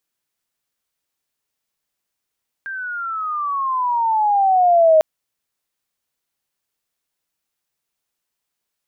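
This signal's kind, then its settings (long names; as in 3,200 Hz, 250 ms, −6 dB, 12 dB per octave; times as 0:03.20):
glide logarithmic 1,600 Hz → 620 Hz −25.5 dBFS → −8 dBFS 2.35 s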